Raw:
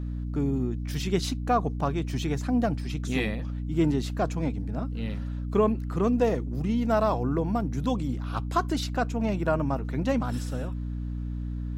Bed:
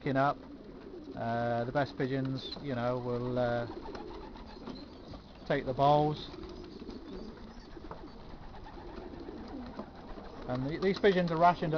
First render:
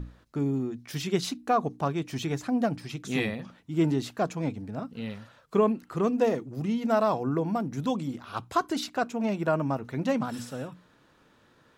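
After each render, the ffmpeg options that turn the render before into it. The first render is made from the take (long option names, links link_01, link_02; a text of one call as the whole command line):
ffmpeg -i in.wav -af "bandreject=frequency=60:width_type=h:width=6,bandreject=frequency=120:width_type=h:width=6,bandreject=frequency=180:width_type=h:width=6,bandreject=frequency=240:width_type=h:width=6,bandreject=frequency=300:width_type=h:width=6" out.wav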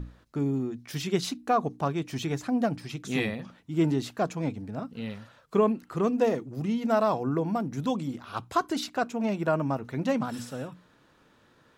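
ffmpeg -i in.wav -af anull out.wav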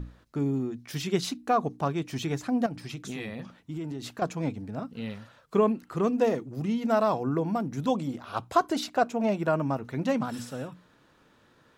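ffmpeg -i in.wav -filter_complex "[0:a]asettb=1/sr,asplit=3[link_01][link_02][link_03];[link_01]atrim=end=2.664[link_04];[link_02]atrim=start=2.66:end=4.22,asetpts=PTS-STARTPTS,afade=type=in:duration=0.004:curve=qsin,afade=type=out:start_time=1.556:duration=0.004:curve=qsin,acompressor=threshold=-31dB:ratio=12:attack=3.2:release=140:knee=1:detection=peak[link_05];[link_03]atrim=start=4.216[link_06];[link_04][link_05]acrossfade=duration=0.004:curve1=hsin:curve2=qsin[link_07];[link_07][link_06]acrossfade=duration=0.004:curve1=qsin:curve2=hsin,asettb=1/sr,asplit=3[link_08][link_09][link_10];[link_08]atrim=end=7.884[link_11];[link_09]atrim=start=7.88:end=9.37,asetpts=PTS-STARTPTS,afade=type=in:duration=0.004:curve=qsin,afade=type=out:start_time=1.486:duration=0.004:curve=qsin,equalizer=frequency=630:width=1.5:gain=6[link_12];[link_10]atrim=start=9.366[link_13];[link_11][link_12]acrossfade=duration=0.004:curve1=hsin:curve2=qsin[link_14];[link_14][link_13]acrossfade=duration=0.004:curve1=qsin:curve2=hsin" out.wav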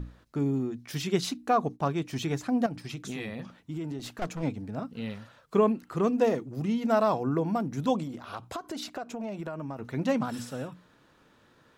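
ffmpeg -i in.wav -filter_complex "[0:a]asettb=1/sr,asplit=3[link_01][link_02][link_03];[link_01]atrim=end=1.514[link_04];[link_02]atrim=start=1.51:end=2.95,asetpts=PTS-STARTPTS,afade=type=in:duration=0.004:curve=qsin,afade=type=out:start_time=1.436:duration=0.004:curve=qsin,agate=range=-33dB:threshold=-43dB:ratio=3:release=100:detection=peak[link_05];[link_03]atrim=start=2.946[link_06];[link_04][link_05]acrossfade=duration=0.004:curve1=hsin:curve2=qsin[link_07];[link_07][link_06]acrossfade=duration=0.004:curve1=qsin:curve2=hsin,asettb=1/sr,asplit=3[link_08][link_09][link_10];[link_08]atrim=end=3.994[link_11];[link_09]atrim=start=3.99:end=4.43,asetpts=PTS-STARTPTS,afade=type=in:duration=0.004:curve=qsin,afade=type=out:start_time=0.436:duration=0.004:curve=qsin,aeval=exprs='clip(val(0),-1,0.0141)':channel_layout=same[link_12];[link_10]atrim=start=4.426[link_13];[link_11][link_12]acrossfade=duration=0.004:curve1=hsin:curve2=qsin[link_14];[link_14][link_13]acrossfade=duration=0.004:curve1=qsin:curve2=hsin,asettb=1/sr,asplit=3[link_15][link_16][link_17];[link_15]atrim=end=8.034[link_18];[link_16]atrim=start=8.03:end=9.79,asetpts=PTS-STARTPTS,afade=type=in:duration=0.004:curve=qsin,afade=type=out:start_time=1.756:duration=0.004:curve=qsin,acompressor=threshold=-32dB:ratio=10:attack=3.2:release=140:knee=1:detection=peak[link_19];[link_17]atrim=start=9.786[link_20];[link_18][link_19]acrossfade=duration=0.004:curve1=hsin:curve2=qsin[link_21];[link_21][link_20]acrossfade=duration=0.004:curve1=qsin:curve2=hsin" out.wav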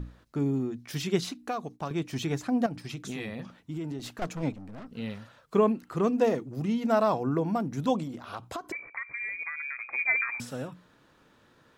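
ffmpeg -i in.wav -filter_complex "[0:a]asettb=1/sr,asplit=3[link_01][link_02][link_03];[link_01]atrim=end=1.214[link_04];[link_02]atrim=start=1.21:end=1.91,asetpts=PTS-STARTPTS,afade=type=in:duration=0.004:curve=qsin,afade=type=out:start_time=0.696:duration=0.004:curve=qsin,acrossover=split=630|2300[link_05][link_06][link_07];[link_05]acompressor=threshold=-37dB:ratio=4[link_08];[link_06]acompressor=threshold=-36dB:ratio=4[link_09];[link_07]acompressor=threshold=-36dB:ratio=4[link_10];[link_08][link_09][link_10]amix=inputs=3:normalize=0[link_11];[link_03]atrim=start=1.906[link_12];[link_04][link_11]acrossfade=duration=0.004:curve1=hsin:curve2=qsin[link_13];[link_13][link_12]acrossfade=duration=0.004:curve1=qsin:curve2=hsin,asettb=1/sr,asplit=3[link_14][link_15][link_16];[link_14]atrim=end=4.524[link_17];[link_15]atrim=start=4.52:end=4.92,asetpts=PTS-STARTPTS,afade=type=in:duration=0.004:curve=qsin,afade=type=out:start_time=0.396:duration=0.004:curve=qsin,aeval=exprs='(tanh(112*val(0)+0.55)-tanh(0.55))/112':channel_layout=same[link_18];[link_16]atrim=start=4.916[link_19];[link_17][link_18]acrossfade=duration=0.004:curve1=hsin:curve2=qsin[link_20];[link_20][link_19]acrossfade=duration=0.004:curve1=qsin:curve2=hsin,asettb=1/sr,asplit=3[link_21][link_22][link_23];[link_21]atrim=end=8.724[link_24];[link_22]atrim=start=8.72:end=10.4,asetpts=PTS-STARTPTS,afade=type=in:duration=0.004:curve=qsin,afade=type=out:start_time=1.676:duration=0.004:curve=qsin,lowpass=frequency=2200:width_type=q:width=0.5098,lowpass=frequency=2200:width_type=q:width=0.6013,lowpass=frequency=2200:width_type=q:width=0.9,lowpass=frequency=2200:width_type=q:width=2.563,afreqshift=-2600[link_25];[link_23]atrim=start=10.396[link_26];[link_24][link_25]acrossfade=duration=0.004:curve1=hsin:curve2=qsin[link_27];[link_27][link_26]acrossfade=duration=0.004:curve1=qsin:curve2=hsin" out.wav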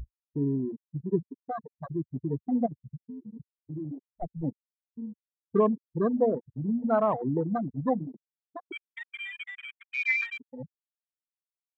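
ffmpeg -i in.wav -af "afftfilt=real='re*gte(hypot(re,im),0.126)':imag='im*gte(hypot(re,im),0.126)':win_size=1024:overlap=0.75,afwtdn=0.0112" out.wav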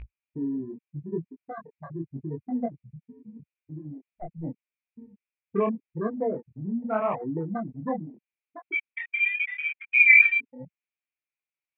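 ffmpeg -i in.wav -af "flanger=delay=18.5:depth=7.5:speed=0.82,lowpass=frequency=2400:width_type=q:width=7.8" out.wav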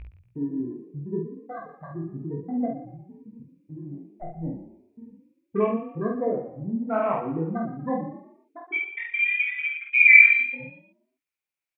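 ffmpeg -i in.wav -filter_complex "[0:a]asplit=2[link_01][link_02];[link_02]adelay=49,volume=-2.5dB[link_03];[link_01][link_03]amix=inputs=2:normalize=0,asplit=5[link_04][link_05][link_06][link_07][link_08];[link_05]adelay=118,afreqshift=30,volume=-12dB[link_09];[link_06]adelay=236,afreqshift=60,volume=-21.1dB[link_10];[link_07]adelay=354,afreqshift=90,volume=-30.2dB[link_11];[link_08]adelay=472,afreqshift=120,volume=-39.4dB[link_12];[link_04][link_09][link_10][link_11][link_12]amix=inputs=5:normalize=0" out.wav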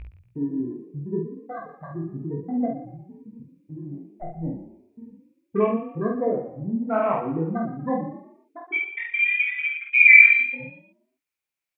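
ffmpeg -i in.wav -af "volume=2dB,alimiter=limit=-1dB:level=0:latency=1" out.wav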